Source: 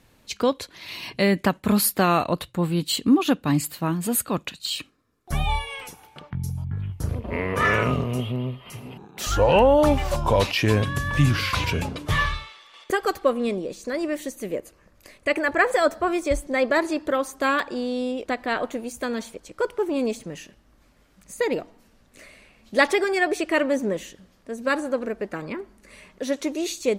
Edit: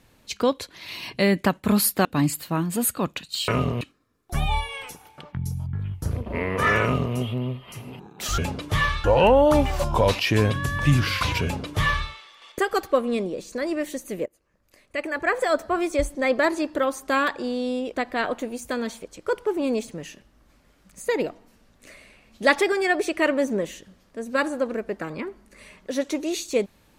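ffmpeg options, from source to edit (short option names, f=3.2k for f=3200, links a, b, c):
-filter_complex "[0:a]asplit=7[a][b][c][d][e][f][g];[a]atrim=end=2.052[h];[b]atrim=start=3.358:end=4.792[i];[c]atrim=start=7.798:end=8.132[j];[d]atrim=start=4.788:end=9.362[k];[e]atrim=start=11.748:end=12.412[l];[f]atrim=start=9.358:end=14.58,asetpts=PTS-STARTPTS,afade=t=out:st=5.218:d=0.004:c=hsin:silence=0.0841395[m];[g]atrim=start=14.58,asetpts=PTS-STARTPTS,afade=t=in:d=1.63:silence=0.0841395[n];[h][i]acrossfade=d=0.004:c1=hsin:c2=hsin[o];[o][j]acrossfade=d=0.004:c1=hsin:c2=hsin[p];[p][k]acrossfade=d=0.004:c1=hsin:c2=hsin[q];[q][l]acrossfade=d=0.004:c1=hsin:c2=hsin[r];[m][n]concat=n=2:v=0:a=1[s];[r][s]acrossfade=d=0.004:c1=hsin:c2=hsin"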